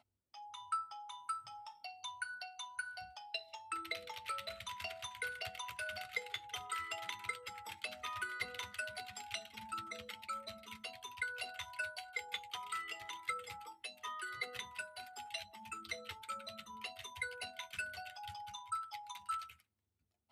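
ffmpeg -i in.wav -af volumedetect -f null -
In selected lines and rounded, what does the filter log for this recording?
mean_volume: -45.5 dB
max_volume: -23.2 dB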